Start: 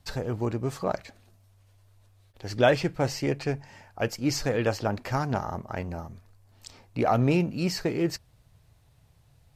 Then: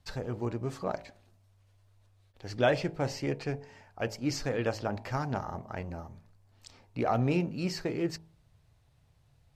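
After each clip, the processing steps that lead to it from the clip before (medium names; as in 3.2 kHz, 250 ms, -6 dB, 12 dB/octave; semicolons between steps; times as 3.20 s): treble shelf 11 kHz -11 dB; de-hum 54.06 Hz, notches 19; trim -4.5 dB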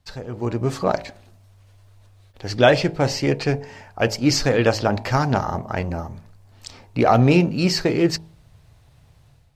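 dynamic bell 4.3 kHz, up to +4 dB, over -53 dBFS, Q 1.2; level rider gain up to 11.5 dB; trim +1.5 dB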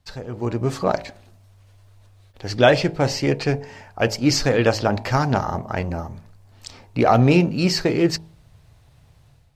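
no audible change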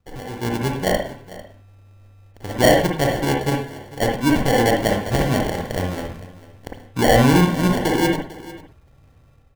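sample-and-hold 35×; delay 448 ms -18 dB; on a send at -1 dB: reverberation, pre-delay 51 ms; on the sum: trim -1.5 dB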